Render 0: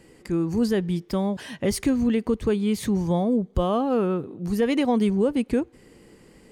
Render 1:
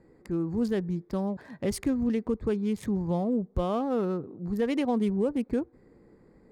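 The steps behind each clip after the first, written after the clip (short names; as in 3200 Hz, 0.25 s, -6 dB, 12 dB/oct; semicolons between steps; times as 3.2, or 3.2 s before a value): Wiener smoothing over 15 samples; gain -5 dB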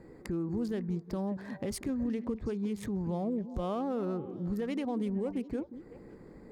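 compressor 2:1, threshold -44 dBFS, peak gain reduction 12 dB; limiter -32 dBFS, peak gain reduction 4.5 dB; delay with a stepping band-pass 0.184 s, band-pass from 270 Hz, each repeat 1.4 oct, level -10 dB; gain +6 dB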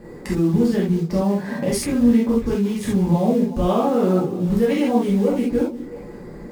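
in parallel at -6.5 dB: short-mantissa float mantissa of 2-bit; on the sum: non-linear reverb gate 0.1 s flat, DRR -6 dB; gain +4.5 dB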